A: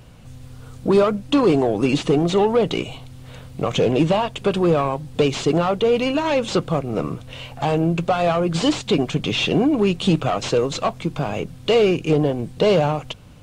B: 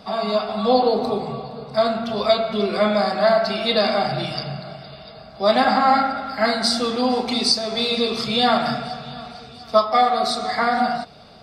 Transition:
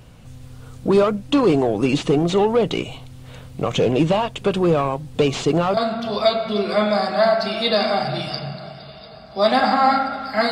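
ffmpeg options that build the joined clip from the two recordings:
-filter_complex "[1:a]asplit=2[a][b];[0:a]apad=whole_dur=10.51,atrim=end=10.51,atrim=end=5.772[c];[b]atrim=start=1.808:end=6.55[d];[a]atrim=start=1.27:end=1.81,asetpts=PTS-STARTPTS,volume=-10.5dB,afade=t=in:d=0.004:c=hsin,afade=t=out:st=0.536:d=0.004:c=hsin,adelay=5230[e];[c][d]acrossfade=d=0.004:c1=hsin:c2=hsin[f];[f][e]amix=inputs=2:normalize=0"

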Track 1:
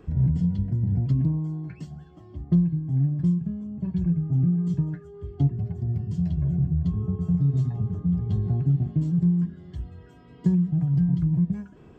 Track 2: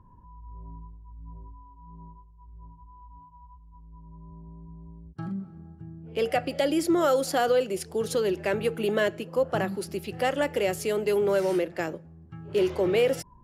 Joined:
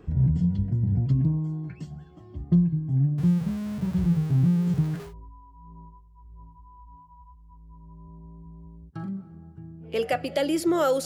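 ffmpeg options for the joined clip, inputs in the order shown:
-filter_complex "[0:a]asettb=1/sr,asplit=3[a][b][c];[a]atrim=end=3.184[d];[b]atrim=start=3.18:end=5.14,asetpts=PTS-STARTPTS,afade=t=in:d=0.004:c=qsin,afade=t=out:st=1.956:d=0.004:c=qsin,aeval=exprs='val(0)+0.5*0.0188*sgn(val(0))':c=same[e];[c]atrim=start=5.136[f];[d][e]acrossfade=d=0.004:c1=hsin:c2=qsin[g];[g][f]acrossfade=d=0.004:c1=qsin:c2=hsin,apad=whole_dur=11.05,atrim=end=11.05,atrim=end=5.14,asetpts=PTS-STARTPTS[h];[1:a]atrim=start=1.23:end=7.28,asetpts=PTS-STARTPTS[i];[h][i]acrossfade=d=0.14:c1=tri:c2=tri"

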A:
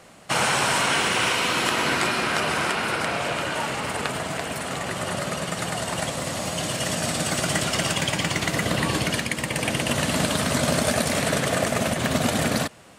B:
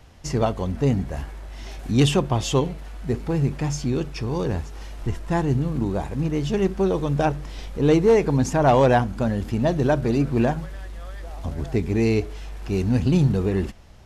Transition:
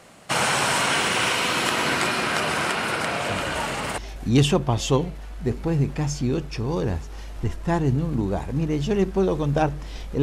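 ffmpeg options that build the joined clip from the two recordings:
-filter_complex "[1:a]asplit=2[a][b];[0:a]apad=whole_dur=10.22,atrim=end=10.22,atrim=end=3.982[c];[b]atrim=start=1.608:end=7.85[d];[a]atrim=start=0.92:end=1.61,asetpts=PTS-STARTPTS,volume=-10dB,afade=t=in:d=0.004:c=hsin,afade=t=out:st=0.686:d=0.004:c=hsin,adelay=145089S[e];[c][d]acrossfade=d=0.004:c1=hsin:c2=hsin[f];[f][e]amix=inputs=2:normalize=0"

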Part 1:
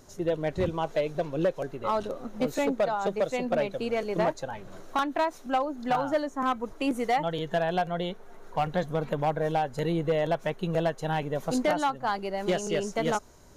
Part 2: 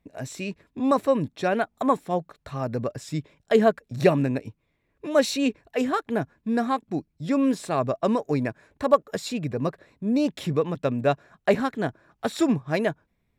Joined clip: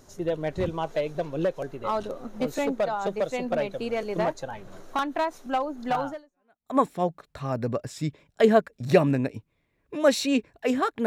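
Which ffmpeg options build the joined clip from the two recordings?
-filter_complex "[0:a]apad=whole_dur=11.06,atrim=end=11.06,atrim=end=6.77,asetpts=PTS-STARTPTS[a];[1:a]atrim=start=1.18:end=6.17,asetpts=PTS-STARTPTS[b];[a][b]acrossfade=d=0.7:c1=exp:c2=exp"

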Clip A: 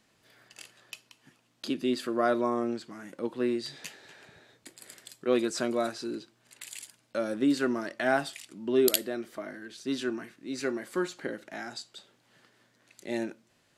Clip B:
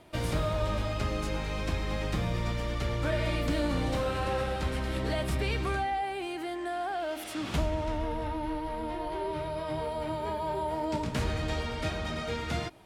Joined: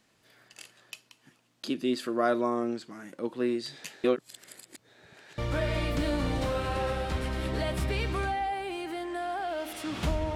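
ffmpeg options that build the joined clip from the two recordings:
-filter_complex "[0:a]apad=whole_dur=10.35,atrim=end=10.35,asplit=2[a][b];[a]atrim=end=4.042[c];[b]atrim=start=4.038:end=5.382,asetpts=PTS-STARTPTS,areverse[d];[1:a]atrim=start=2.888:end=7.86[e];[c][d]acrossfade=d=0.004:c1=hsin:c2=hsin[f];[f][e]acrossfade=d=0.004:c1=hsin:c2=hsin"

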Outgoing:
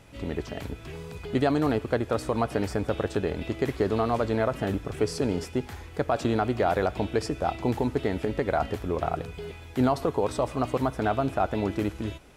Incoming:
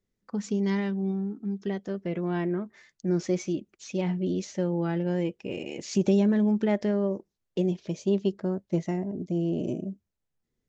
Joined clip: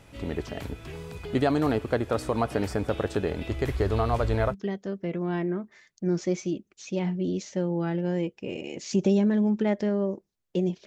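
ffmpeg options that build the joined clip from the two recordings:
-filter_complex "[0:a]asplit=3[a][b][c];[a]afade=t=out:st=3.49:d=0.02[d];[b]asubboost=boost=9:cutoff=71,afade=t=in:st=3.49:d=0.02,afade=t=out:st=4.55:d=0.02[e];[c]afade=t=in:st=4.55:d=0.02[f];[d][e][f]amix=inputs=3:normalize=0,apad=whole_dur=10.86,atrim=end=10.86,atrim=end=4.55,asetpts=PTS-STARTPTS[g];[1:a]atrim=start=1.51:end=7.88,asetpts=PTS-STARTPTS[h];[g][h]acrossfade=d=0.06:c1=tri:c2=tri"

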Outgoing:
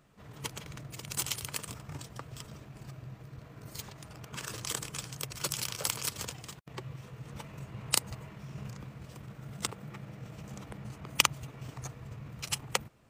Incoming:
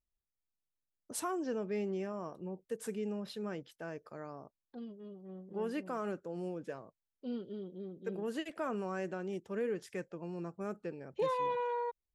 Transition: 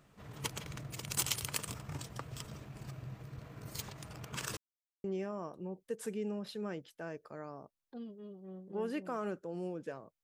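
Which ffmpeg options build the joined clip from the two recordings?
-filter_complex "[0:a]apad=whole_dur=10.23,atrim=end=10.23,asplit=2[a][b];[a]atrim=end=4.57,asetpts=PTS-STARTPTS,afade=t=out:st=4.566:d=0.004:c=hsin[c];[b]atrim=start=4.57:end=5.04,asetpts=PTS-STARTPTS,volume=0[d];[1:a]atrim=start=1.85:end=7.04,asetpts=PTS-STARTPTS,afade=t=in:d=0.004:c=hsin[e];[c][d][e]concat=n=3:v=0:a=1"

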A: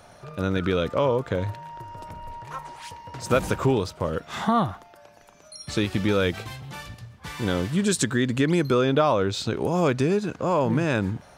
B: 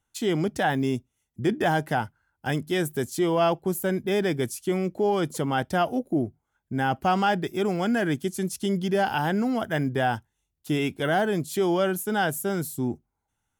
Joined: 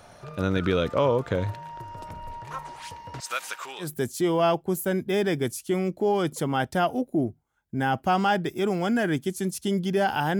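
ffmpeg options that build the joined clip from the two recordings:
-filter_complex "[0:a]asettb=1/sr,asplit=3[a][b][c];[a]atrim=end=3.204[d];[b]atrim=start=3.2:end=3.92,asetpts=PTS-STARTPTS,afade=t=in:d=0.004:c=qsin,afade=t=out:st=0.716:d=0.004:c=qsin,highpass=1.5k[e];[c]atrim=start=3.916[f];[d][e]acrossfade=d=0.004:c1=hsin:c2=qsin[g];[g][f]acrossfade=d=0.004:c1=qsin:c2=hsin,apad=whole_dur=10.39,atrim=end=10.39,atrim=end=3.92,asetpts=PTS-STARTPTS[h];[1:a]atrim=start=2.76:end=9.37,asetpts=PTS-STARTPTS[i];[h][i]acrossfade=d=0.14:c1=tri:c2=tri"

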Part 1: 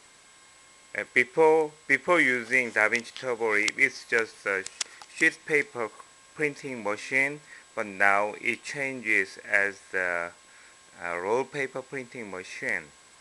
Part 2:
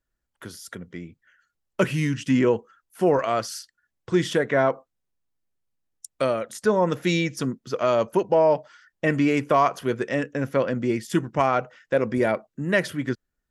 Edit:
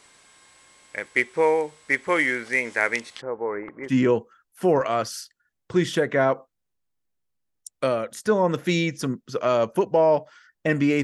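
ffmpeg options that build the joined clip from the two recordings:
-filter_complex "[0:a]asplit=3[a][b][c];[a]afade=t=out:st=3.2:d=0.02[d];[b]lowpass=f=1.2k:w=0.5412,lowpass=f=1.2k:w=1.3066,afade=t=in:st=3.2:d=0.02,afade=t=out:st=3.95:d=0.02[e];[c]afade=t=in:st=3.95:d=0.02[f];[d][e][f]amix=inputs=3:normalize=0,apad=whole_dur=11.03,atrim=end=11.03,atrim=end=3.95,asetpts=PTS-STARTPTS[g];[1:a]atrim=start=2.21:end=9.41,asetpts=PTS-STARTPTS[h];[g][h]acrossfade=d=0.12:c1=tri:c2=tri"

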